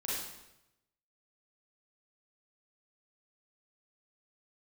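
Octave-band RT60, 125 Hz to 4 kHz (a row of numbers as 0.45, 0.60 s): 1.1, 0.90, 0.95, 0.85, 0.85, 0.80 s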